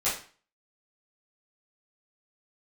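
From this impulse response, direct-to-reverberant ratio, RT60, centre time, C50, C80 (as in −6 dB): −12.5 dB, 0.40 s, 34 ms, 6.0 dB, 11.5 dB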